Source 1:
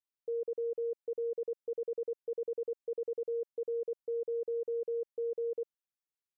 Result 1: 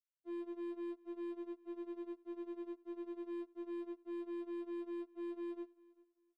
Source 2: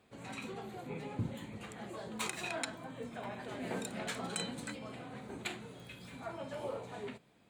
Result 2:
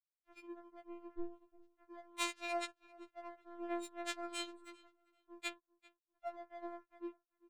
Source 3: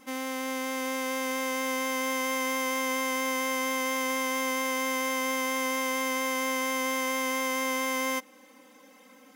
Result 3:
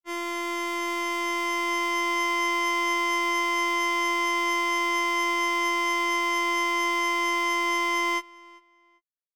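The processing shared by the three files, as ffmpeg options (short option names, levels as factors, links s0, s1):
-filter_complex "[0:a]bandreject=f=1600:w=12,anlmdn=1.58,bandreject=f=60:t=h:w=6,bandreject=f=120:t=h:w=6,bandreject=f=180:t=h:w=6,bandreject=f=240:t=h:w=6,bandreject=f=300:t=h:w=6,bandreject=f=360:t=h:w=6,bandreject=f=420:t=h:w=6,bandreject=f=480:t=h:w=6,acrossover=split=840|6200[s0][s1][s2];[s2]alimiter=level_in=4.47:limit=0.0631:level=0:latency=1:release=29,volume=0.224[s3];[s0][s1][s3]amix=inputs=3:normalize=0,afftfilt=real='hypot(re,im)*cos(PI*b)':imag='0':win_size=512:overlap=0.75,aeval=exprs='sgn(val(0))*max(abs(val(0))-0.00119,0)':c=same,asplit=2[s4][s5];[s5]adelay=394,lowpass=f=4100:p=1,volume=0.075,asplit=2[s6][s7];[s7]adelay=394,lowpass=f=4100:p=1,volume=0.24[s8];[s6][s8]amix=inputs=2:normalize=0[s9];[s4][s9]amix=inputs=2:normalize=0,afftfilt=real='re*4*eq(mod(b,16),0)':imag='im*4*eq(mod(b,16),0)':win_size=2048:overlap=0.75,volume=0.75"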